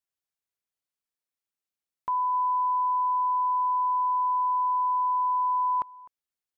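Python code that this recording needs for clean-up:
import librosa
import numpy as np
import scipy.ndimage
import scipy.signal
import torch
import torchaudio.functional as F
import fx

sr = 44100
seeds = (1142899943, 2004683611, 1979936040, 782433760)

y = fx.fix_echo_inverse(x, sr, delay_ms=255, level_db=-21.0)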